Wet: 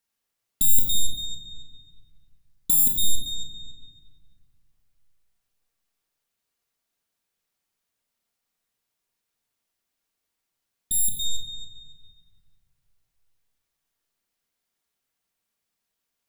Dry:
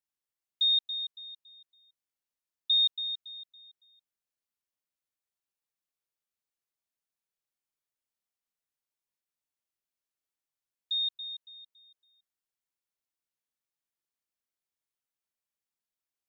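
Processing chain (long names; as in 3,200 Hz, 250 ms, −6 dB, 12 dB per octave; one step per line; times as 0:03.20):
stylus tracing distortion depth 0.3 ms
rectangular room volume 1,700 cubic metres, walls mixed, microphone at 1.7 metres
level +8.5 dB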